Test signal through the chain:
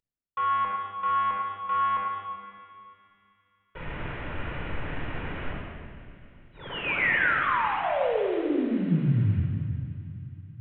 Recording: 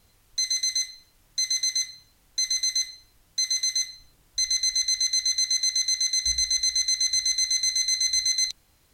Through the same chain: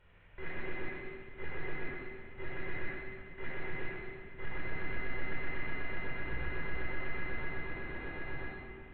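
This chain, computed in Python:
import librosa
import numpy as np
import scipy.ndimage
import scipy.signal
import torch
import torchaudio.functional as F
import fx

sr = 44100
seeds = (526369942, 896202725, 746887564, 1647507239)

p1 = fx.cvsd(x, sr, bps=16000)
p2 = fx.peak_eq(p1, sr, hz=1700.0, db=3.5, octaves=0.73)
p3 = p2 + fx.echo_wet_highpass(p2, sr, ms=144, feedback_pct=78, hz=1700.0, wet_db=-15.0, dry=0)
p4 = fx.room_shoebox(p3, sr, seeds[0], volume_m3=3800.0, walls='mixed', distance_m=4.7)
y = F.gain(torch.from_numpy(p4), -7.0).numpy()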